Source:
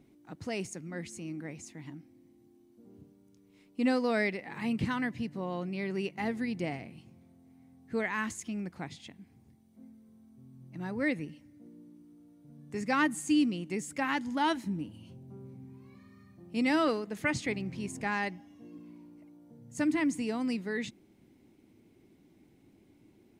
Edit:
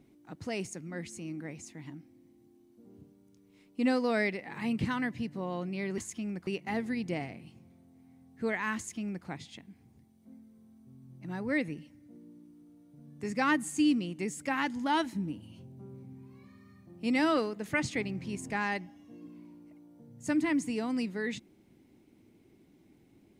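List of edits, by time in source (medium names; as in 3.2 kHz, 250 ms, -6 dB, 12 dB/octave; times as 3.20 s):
8.28–8.77 s: copy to 5.98 s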